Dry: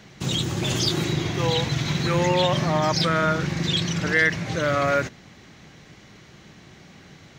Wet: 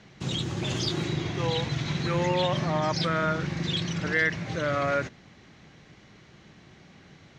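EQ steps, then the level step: distance through air 62 m; -4.5 dB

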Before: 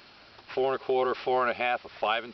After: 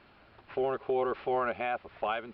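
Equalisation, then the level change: distance through air 420 m; bass shelf 120 Hz +6 dB; -2.5 dB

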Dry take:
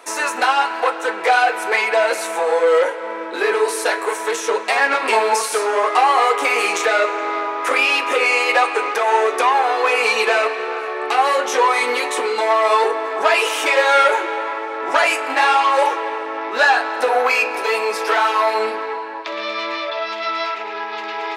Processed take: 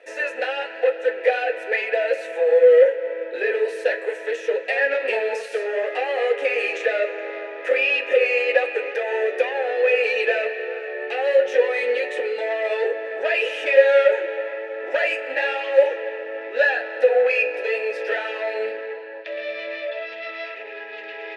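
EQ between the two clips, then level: vowel filter e; +6.0 dB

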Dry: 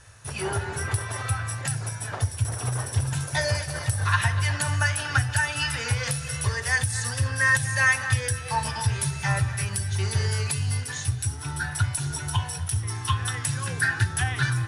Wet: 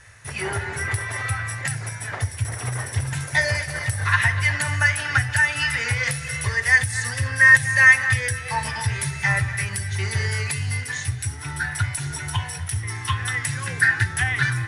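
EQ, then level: peaking EQ 2 kHz +12.5 dB 0.46 oct; 0.0 dB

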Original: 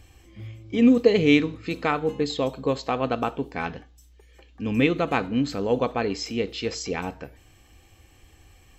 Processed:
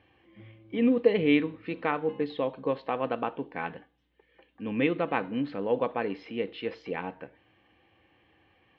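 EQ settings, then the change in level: distance through air 140 m; cabinet simulation 230–3000 Hz, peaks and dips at 250 Hz -5 dB, 400 Hz -6 dB, 700 Hz -5 dB, 1.3 kHz -6 dB, 2.4 kHz -4 dB; 0.0 dB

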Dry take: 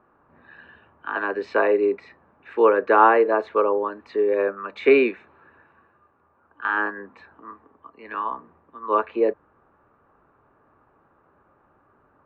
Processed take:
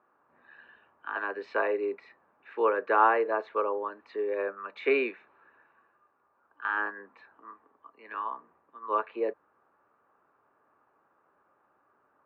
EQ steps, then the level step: high-pass 610 Hz 6 dB/octave; distance through air 90 m; -5.0 dB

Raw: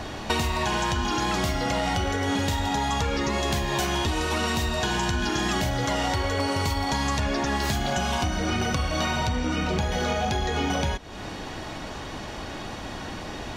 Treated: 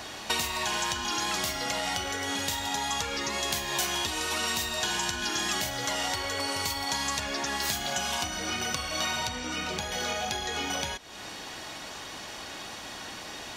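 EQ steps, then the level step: tilt EQ +3 dB/octave; -5.0 dB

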